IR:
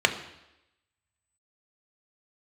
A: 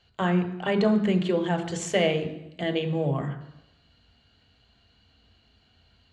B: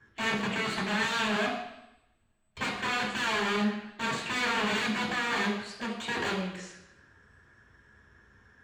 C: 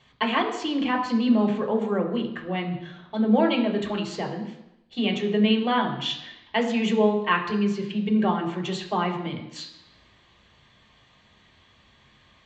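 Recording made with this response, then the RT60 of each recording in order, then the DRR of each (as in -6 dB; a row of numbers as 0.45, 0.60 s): A; 0.90, 0.90, 0.90 s; 5.0, -9.0, 1.0 dB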